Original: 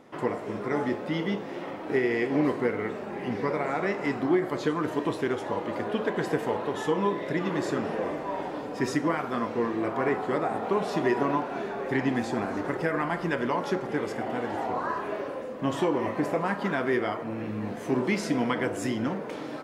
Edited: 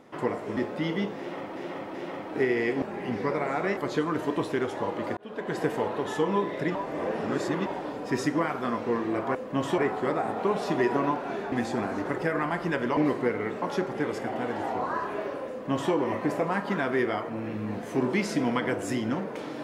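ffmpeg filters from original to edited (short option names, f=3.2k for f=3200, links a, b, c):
-filter_complex "[0:a]asplit=14[a][b][c][d][e][f][g][h][i][j][k][l][m][n];[a]atrim=end=0.572[o];[b]atrim=start=0.868:end=1.862[p];[c]atrim=start=1.478:end=1.862[q];[d]atrim=start=1.478:end=2.362[r];[e]atrim=start=3.008:end=3.962[s];[f]atrim=start=4.458:end=5.86,asetpts=PTS-STARTPTS,afade=t=out:st=1.398:d=0.004:c=hsin[t];[g]atrim=start=5.86:end=7.442,asetpts=PTS-STARTPTS,afade=t=in:d=0.46[u];[h]atrim=start=7.438:end=8.352,asetpts=PTS-STARTPTS,areverse[v];[i]atrim=start=8.348:end=10.042[w];[j]atrim=start=15.438:end=15.872[x];[k]atrim=start=10.038:end=11.782[y];[l]atrim=start=12.108:end=13.562[z];[m]atrim=start=2.358:end=3.012[aa];[n]atrim=start=13.558[ab];[o][p]acrossfade=d=0.004:c1=hsin:c2=hsin[ac];[ac][q]acrossfade=d=0.004:c1=hsin:c2=hsin[ad];[ad][r]acrossfade=d=0.004:c1=hsin:c2=hsin[ae];[ae][s]acrossfade=d=0.004:c1=hsin:c2=hsin[af];[t][u]concat=n=2:v=0:a=1[ag];[af][ag]acrossfade=d=0.004:c1=hsin:c2=hsin[ah];[ah][v]acrossfade=d=0.004:c1=hsin:c2=hsin[ai];[ai][w]acrossfade=d=0.004:c1=hsin:c2=hsin[aj];[aj][x]acrossfade=d=0.004:c1=hsin:c2=hsin[ak];[ak][y]acrossfade=d=0.004:c1=hsin:c2=hsin[al];[al][z]acrossfade=d=0.004:c1=hsin:c2=hsin[am];[am][aa]acrossfade=d=0.004:c1=hsin:c2=hsin[an];[an][ab]acrossfade=d=0.004:c1=hsin:c2=hsin"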